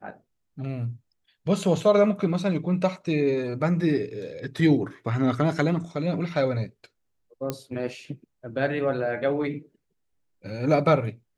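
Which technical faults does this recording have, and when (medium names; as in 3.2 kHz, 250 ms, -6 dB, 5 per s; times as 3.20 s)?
7.50 s: pop -13 dBFS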